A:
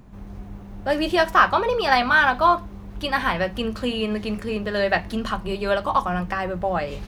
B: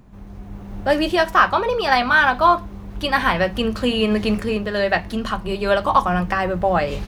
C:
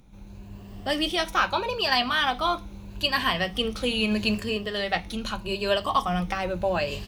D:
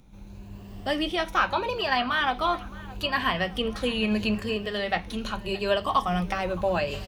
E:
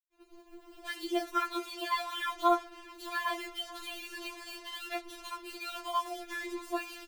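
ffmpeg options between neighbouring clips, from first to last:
-af "dynaudnorm=f=390:g=3:m=10dB,volume=-1dB"
-af "afftfilt=real='re*pow(10,8/40*sin(2*PI*(1.4*log(max(b,1)*sr/1024/100)/log(2)-(0.79)*(pts-256)/sr)))':imag='im*pow(10,8/40*sin(2*PI*(1.4*log(max(b,1)*sr/1024/100)/log(2)-(0.79)*(pts-256)/sr)))':win_size=1024:overlap=0.75,highshelf=f=2.2k:t=q:w=1.5:g=6.5,volume=-8dB"
-filter_complex "[0:a]acrossover=split=2900[a][b];[a]aecho=1:1:618|1236|1854|2472:0.1|0.053|0.0281|0.0149[c];[b]acompressor=threshold=-40dB:ratio=6[d];[c][d]amix=inputs=2:normalize=0"
-af "acrusher=bits=5:mix=0:aa=0.5,afftfilt=real='re*4*eq(mod(b,16),0)':imag='im*4*eq(mod(b,16),0)':win_size=2048:overlap=0.75,volume=-5dB"

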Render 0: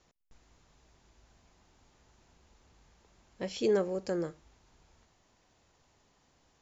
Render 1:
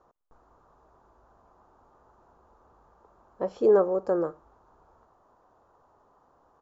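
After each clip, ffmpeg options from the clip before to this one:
-af "firequalizer=gain_entry='entry(170,0);entry(270,4);entry(430,10);entry(1200,14);entry(2100,-13)':delay=0.05:min_phase=1,volume=-1.5dB"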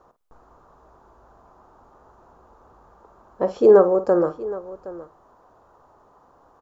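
-af "aecho=1:1:51|768:0.224|0.141,volume=7.5dB"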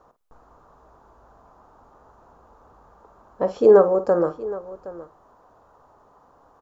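-af "bandreject=f=360:w=12"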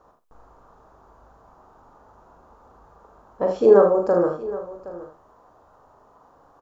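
-af "aecho=1:1:40|78:0.562|0.422,volume=-1dB"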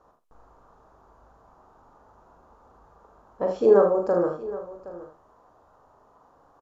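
-af "aresample=32000,aresample=44100,volume=-3.5dB"

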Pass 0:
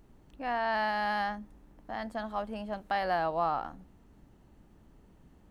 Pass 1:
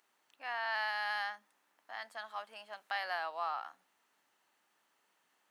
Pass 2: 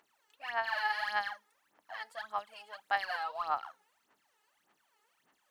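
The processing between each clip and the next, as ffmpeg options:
-af "highpass=1.3k"
-af "aphaser=in_gain=1:out_gain=1:delay=2.4:decay=0.76:speed=1.7:type=sinusoidal,volume=-2.5dB"

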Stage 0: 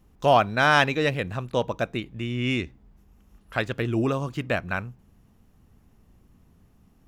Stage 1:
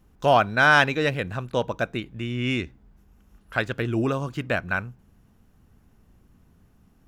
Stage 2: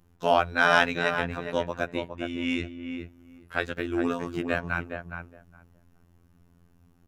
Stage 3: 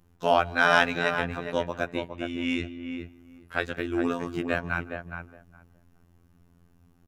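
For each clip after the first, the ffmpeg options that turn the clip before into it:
-af "equalizer=f=1.5k:w=6.5:g=5.5"
-filter_complex "[0:a]asplit=2[a][b];[b]adelay=414,lowpass=f=1.5k:p=1,volume=-6dB,asplit=2[c][d];[d]adelay=414,lowpass=f=1.5k:p=1,volume=0.16,asplit=2[e][f];[f]adelay=414,lowpass=f=1.5k:p=1,volume=0.16[g];[a][c][e][g]amix=inputs=4:normalize=0,afftfilt=real='hypot(re,im)*cos(PI*b)':imag='0':win_size=2048:overlap=0.75"
-filter_complex "[0:a]asplit=2[a][b];[b]adelay=160,highpass=300,lowpass=3.4k,asoftclip=type=hard:threshold=-11dB,volume=-22dB[c];[a][c]amix=inputs=2:normalize=0"

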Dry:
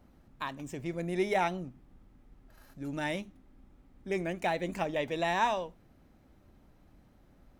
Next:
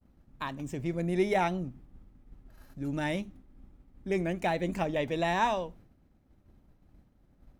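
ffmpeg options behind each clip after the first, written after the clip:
-af "agate=range=-33dB:threshold=-53dB:ratio=3:detection=peak,lowshelf=f=300:g=7"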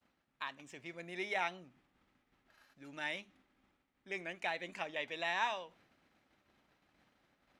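-af "areverse,acompressor=mode=upward:threshold=-40dB:ratio=2.5,areverse,bandpass=f=2.6k:t=q:w=0.84:csg=0,volume=-1dB"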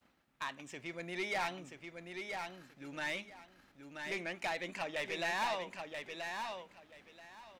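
-filter_complex "[0:a]asoftclip=type=tanh:threshold=-36dB,asplit=2[a][b];[b]aecho=0:1:981|1962|2943:0.531|0.106|0.0212[c];[a][c]amix=inputs=2:normalize=0,volume=5dB"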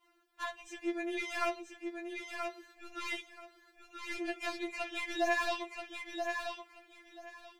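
-af "tremolo=f=280:d=0.333,afftfilt=real='re*4*eq(mod(b,16),0)':imag='im*4*eq(mod(b,16),0)':win_size=2048:overlap=0.75,volume=6dB"

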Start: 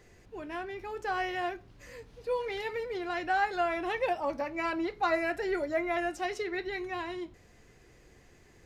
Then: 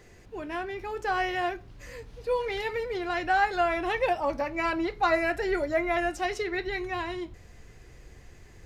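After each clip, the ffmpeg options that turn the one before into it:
-af "asubboost=boost=2:cutoff=140,volume=4.5dB"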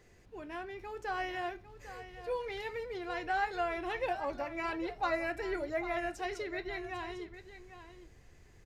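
-af "aecho=1:1:801:0.237,volume=-8.5dB"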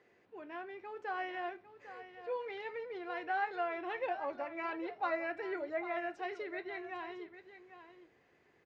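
-af "highpass=280,lowpass=2.8k,volume=-2dB"

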